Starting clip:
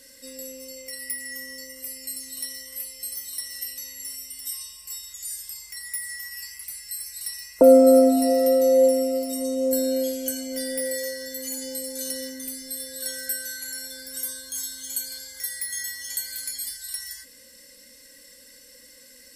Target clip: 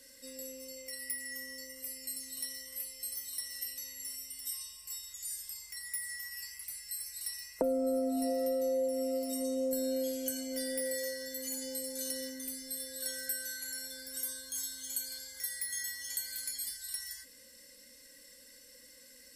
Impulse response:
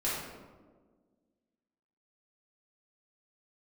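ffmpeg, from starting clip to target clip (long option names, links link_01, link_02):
-filter_complex "[0:a]acrossover=split=140[link_01][link_02];[link_02]acompressor=threshold=-23dB:ratio=8[link_03];[link_01][link_03]amix=inputs=2:normalize=0,volume=-6.5dB"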